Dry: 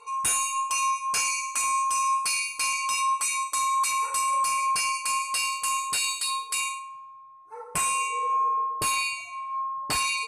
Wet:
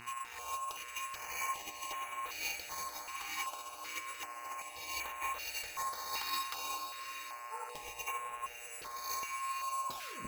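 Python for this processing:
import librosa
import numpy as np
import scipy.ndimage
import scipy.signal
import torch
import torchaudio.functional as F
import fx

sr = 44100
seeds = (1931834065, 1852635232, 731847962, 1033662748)

y = fx.tape_stop_end(x, sr, length_s=0.41)
y = fx.chorus_voices(y, sr, voices=2, hz=0.61, base_ms=17, depth_ms=3.5, mix_pct=35)
y = fx.sample_hold(y, sr, seeds[0], rate_hz=8900.0, jitter_pct=0)
y = fx.over_compress(y, sr, threshold_db=-34.0, ratio=-0.5)
y = fx.low_shelf(y, sr, hz=460.0, db=-10.0)
y = fx.echo_diffused(y, sr, ms=531, feedback_pct=42, wet_db=-7.5)
y = fx.dmg_buzz(y, sr, base_hz=120.0, harmonics=24, level_db=-46.0, tilt_db=-1, odd_only=False)
y = fx.hum_notches(y, sr, base_hz=60, count=8)
y = fx.filter_held_notch(y, sr, hz=2.6, low_hz=570.0, high_hz=4900.0)
y = y * 10.0 ** (-4.0 / 20.0)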